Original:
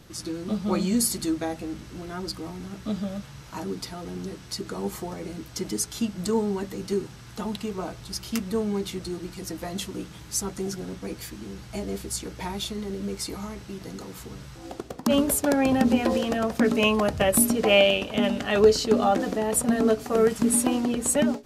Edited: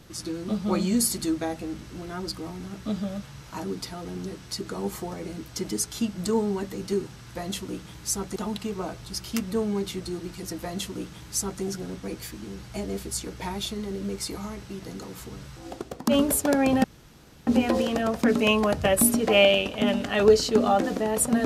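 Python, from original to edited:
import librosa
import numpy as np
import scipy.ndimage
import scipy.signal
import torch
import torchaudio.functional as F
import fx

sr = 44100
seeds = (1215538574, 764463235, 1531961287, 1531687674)

y = fx.edit(x, sr, fx.duplicate(start_s=9.61, length_s=1.01, to_s=7.35),
    fx.insert_room_tone(at_s=15.83, length_s=0.63), tone=tone)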